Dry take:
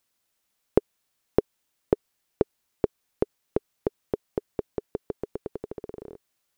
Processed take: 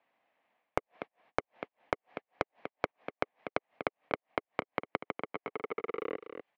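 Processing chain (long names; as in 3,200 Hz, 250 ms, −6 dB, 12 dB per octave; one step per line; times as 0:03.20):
noise gate −54 dBFS, range −39 dB
dynamic equaliser 570 Hz, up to +7 dB, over −39 dBFS, Q 1.1
brickwall limiter −7.5 dBFS, peak gain reduction 7.5 dB
leveller curve on the samples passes 3
reversed playback
downward compressor 5 to 1, threshold −25 dBFS, peak gain reduction 11.5 dB
reversed playback
harmonic generator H 5 −6 dB, 6 −27 dB, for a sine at −16.5 dBFS
gate with flip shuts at −24 dBFS, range −32 dB
loudspeaker in its box 300–2,200 Hz, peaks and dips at 380 Hz −9 dB, 730 Hz +6 dB, 1,400 Hz −10 dB
on a send: single-tap delay 243 ms −13.5 dB
on the sum: multiband upward and downward compressor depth 100%
level +14.5 dB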